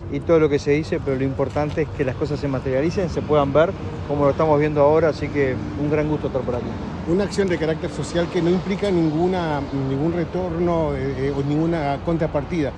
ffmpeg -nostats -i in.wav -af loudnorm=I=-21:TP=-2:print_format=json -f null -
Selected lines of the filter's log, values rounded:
"input_i" : "-21.4",
"input_tp" : "-4.1",
"input_lra" : "2.8",
"input_thresh" : "-31.4",